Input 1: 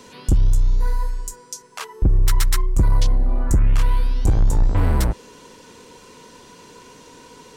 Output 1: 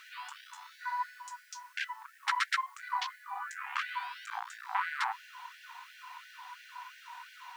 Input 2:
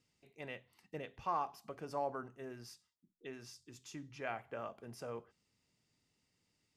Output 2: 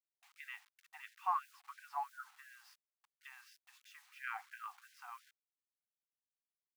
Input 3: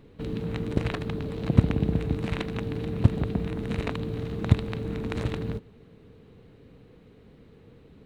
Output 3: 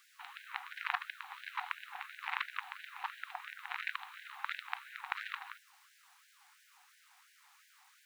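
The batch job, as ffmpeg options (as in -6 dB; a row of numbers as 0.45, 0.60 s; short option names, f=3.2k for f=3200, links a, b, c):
-af "lowpass=2.3k,acrusher=bits=10:mix=0:aa=0.000001,afftfilt=real='re*gte(b*sr/1024,700*pow(1500/700,0.5+0.5*sin(2*PI*2.9*pts/sr)))':imag='im*gte(b*sr/1024,700*pow(1500/700,0.5+0.5*sin(2*PI*2.9*pts/sr)))':win_size=1024:overlap=0.75,volume=3.5dB"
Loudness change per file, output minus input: -16.0, -0.5, -13.5 LU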